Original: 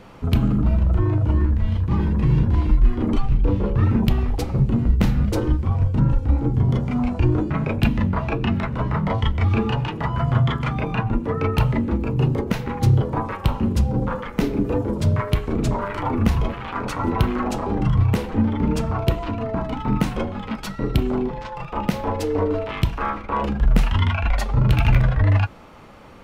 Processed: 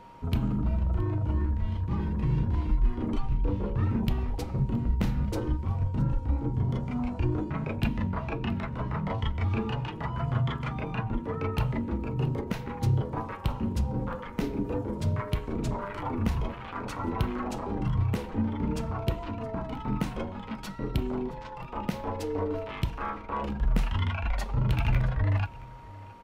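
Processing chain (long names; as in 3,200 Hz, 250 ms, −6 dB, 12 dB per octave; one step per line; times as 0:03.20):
single-tap delay 670 ms −21 dB
steady tone 940 Hz −40 dBFS
level −9 dB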